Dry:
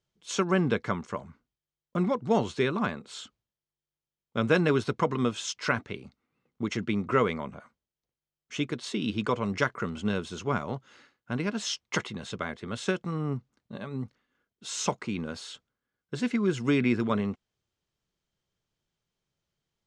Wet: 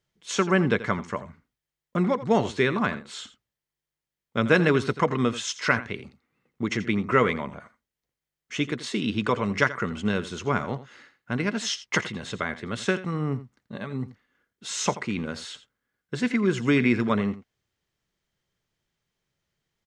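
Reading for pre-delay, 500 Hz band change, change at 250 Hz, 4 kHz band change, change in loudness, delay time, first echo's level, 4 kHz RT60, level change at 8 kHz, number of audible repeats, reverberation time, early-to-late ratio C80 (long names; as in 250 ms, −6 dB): no reverb audible, +3.0 dB, +3.0 dB, +3.5 dB, +3.5 dB, 84 ms, −15.0 dB, no reverb audible, +3.0 dB, 1, no reverb audible, no reverb audible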